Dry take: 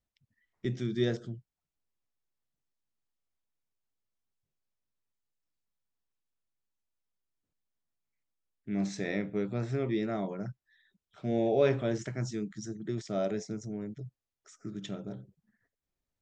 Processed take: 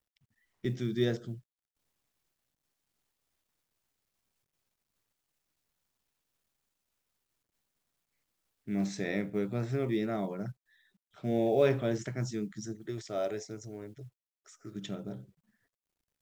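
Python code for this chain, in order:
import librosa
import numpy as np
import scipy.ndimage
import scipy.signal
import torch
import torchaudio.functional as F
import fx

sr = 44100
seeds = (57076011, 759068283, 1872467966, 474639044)

y = fx.quant_companded(x, sr, bits=8)
y = fx.peak_eq(y, sr, hz=190.0, db=-14.0, octaves=0.8, at=(12.75, 14.76))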